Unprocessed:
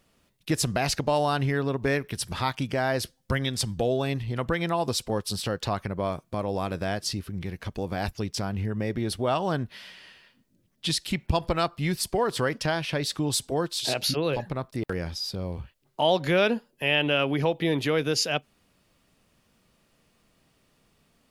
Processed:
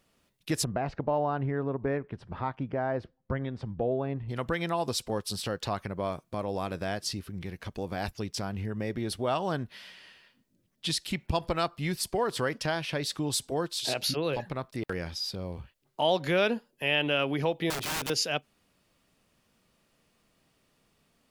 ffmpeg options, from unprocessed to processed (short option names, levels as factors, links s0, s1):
-filter_complex "[0:a]asplit=3[s0][s1][s2];[s0]afade=t=out:st=0.63:d=0.02[s3];[s1]lowpass=1200,afade=t=in:st=0.63:d=0.02,afade=t=out:st=4.28:d=0.02[s4];[s2]afade=t=in:st=4.28:d=0.02[s5];[s3][s4][s5]amix=inputs=3:normalize=0,asettb=1/sr,asplit=3[s6][s7][s8];[s6]atrim=end=14.364[s9];[s7]atrim=start=14.36:end=15.36,asetpts=PTS-STARTPTS,afade=t=in:d=0.004:c=qsin,afade=t=out:st=0.996:d=0.004:c=qsin,equalizer=f=2500:t=o:w=2:g=3[s10];[s8]atrim=start=15.356[s11];[s9][s10]acrossfade=d=0.004:c1=hsin:c2=qsin[s12];[s12][s11]acrossfade=d=0.004:c1=qsin:c2=hsin,asettb=1/sr,asplit=3[s13][s14][s15];[s13]atrim=end=17.704[s16];[s14]atrim=start=17.7:end=18.1,asetpts=PTS-STARTPTS,afade=t=in:d=0.004:c=qsin,afade=t=out:st=0.396:d=0.004:c=qsin,aeval=exprs='(mod(16.8*val(0)+1,2)-1)/16.8':c=same[s17];[s15]atrim=start=18.096[s18];[s16][s17]acrossfade=d=0.004:c1=hsin:c2=qsin[s19];[s19][s18]acrossfade=d=0.004:c1=qsin:c2=hsin,lowshelf=f=150:g=-3.5,volume=0.708"